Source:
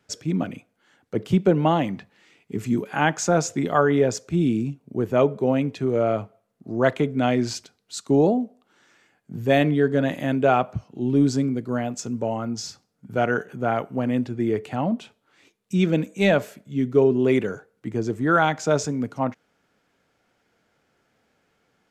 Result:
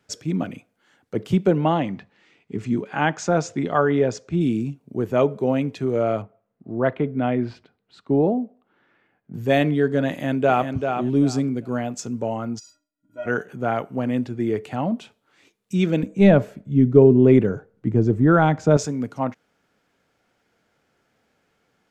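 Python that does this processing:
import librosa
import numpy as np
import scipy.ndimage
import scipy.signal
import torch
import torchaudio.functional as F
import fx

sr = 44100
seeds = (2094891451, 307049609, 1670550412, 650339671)

y = fx.air_absorb(x, sr, metres=88.0, at=(1.58, 4.41))
y = fx.air_absorb(y, sr, metres=460.0, at=(6.22, 9.34))
y = fx.echo_throw(y, sr, start_s=10.1, length_s=0.6, ms=390, feedback_pct=20, wet_db=-6.0)
y = fx.stiff_resonator(y, sr, f0_hz=290.0, decay_s=0.28, stiffness=0.03, at=(12.58, 13.25), fade=0.02)
y = fx.tilt_eq(y, sr, slope=-3.5, at=(16.03, 18.77))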